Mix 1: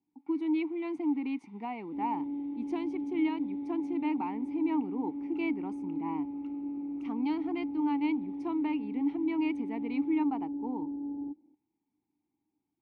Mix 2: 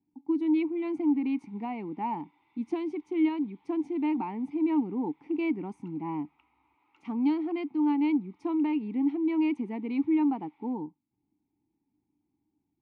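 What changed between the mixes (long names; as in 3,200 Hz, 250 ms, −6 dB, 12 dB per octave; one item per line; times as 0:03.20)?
speech: add low-shelf EQ 230 Hz +11.5 dB
first sound: entry +0.50 s
second sound: muted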